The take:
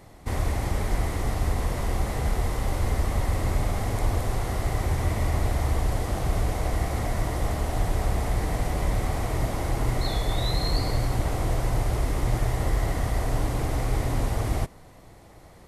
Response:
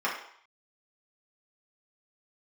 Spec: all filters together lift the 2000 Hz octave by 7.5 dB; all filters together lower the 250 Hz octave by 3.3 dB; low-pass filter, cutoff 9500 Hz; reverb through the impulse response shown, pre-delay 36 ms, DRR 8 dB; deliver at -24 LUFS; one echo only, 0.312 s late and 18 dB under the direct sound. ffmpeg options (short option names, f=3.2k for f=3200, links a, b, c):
-filter_complex "[0:a]lowpass=9.5k,equalizer=f=250:t=o:g=-5,equalizer=f=2k:t=o:g=8.5,aecho=1:1:312:0.126,asplit=2[a][b];[1:a]atrim=start_sample=2205,adelay=36[c];[b][c]afir=irnorm=-1:irlink=0,volume=-19dB[d];[a][d]amix=inputs=2:normalize=0,volume=3dB"